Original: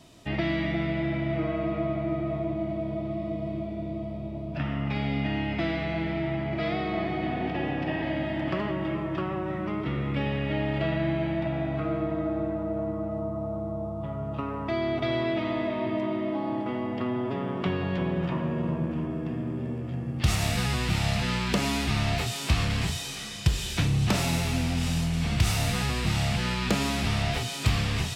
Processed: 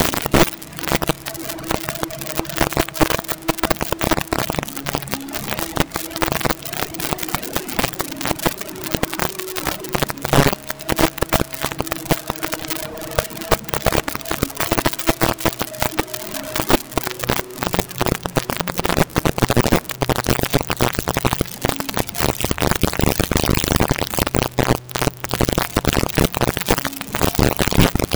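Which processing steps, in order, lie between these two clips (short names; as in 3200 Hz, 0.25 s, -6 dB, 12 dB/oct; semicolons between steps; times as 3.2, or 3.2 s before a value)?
tilt -2.5 dB/oct; on a send: darkening echo 0.362 s, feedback 52%, low-pass 1600 Hz, level -3 dB; on the sum: spring tank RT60 2.8 s, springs 40 ms, chirp 65 ms, DRR -1.5 dB; in parallel at -7 dB: sample-rate reducer 2400 Hz, jitter 0%; on the sum: notches 50/100/150/200/250/300 Hz; tremolo 2.1 Hz, depth 58%; compressor 12:1, threshold -37 dBFS, peak gain reduction 32 dB; HPF 120 Hz 12 dB/oct; high shelf 3900 Hz +7 dB; fuzz box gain 57 dB, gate -57 dBFS; companded quantiser 2-bit; reverb removal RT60 1.5 s; gain -1.5 dB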